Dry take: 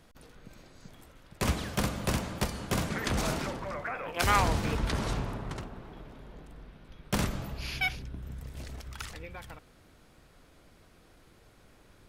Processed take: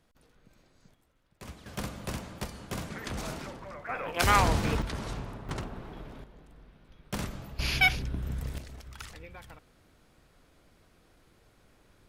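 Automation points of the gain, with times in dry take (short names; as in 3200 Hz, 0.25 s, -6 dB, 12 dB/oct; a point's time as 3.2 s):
-10 dB
from 0.94 s -16.5 dB
from 1.66 s -6.5 dB
from 3.89 s +2 dB
from 4.82 s -5 dB
from 5.49 s +3 dB
from 6.24 s -5.5 dB
from 7.59 s +7 dB
from 8.58 s -3.5 dB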